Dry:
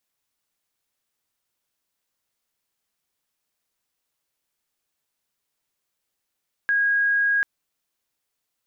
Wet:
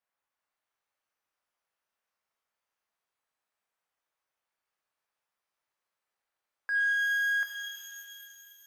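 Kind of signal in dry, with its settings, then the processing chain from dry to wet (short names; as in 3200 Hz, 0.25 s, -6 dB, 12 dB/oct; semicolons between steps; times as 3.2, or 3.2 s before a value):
tone sine 1640 Hz -17.5 dBFS 0.74 s
soft clip -27 dBFS; three-band isolator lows -13 dB, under 530 Hz, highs -17 dB, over 2000 Hz; shimmer reverb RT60 2.4 s, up +12 st, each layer -2 dB, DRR 4.5 dB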